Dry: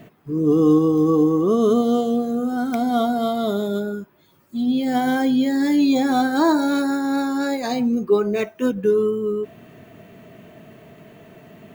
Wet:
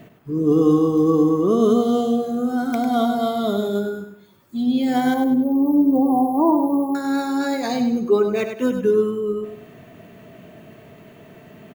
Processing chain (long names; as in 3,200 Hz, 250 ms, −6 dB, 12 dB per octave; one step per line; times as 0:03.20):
0:05.14–0:06.95: linear-phase brick-wall band-stop 1,200–11,000 Hz
repeating echo 99 ms, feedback 35%, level −8 dB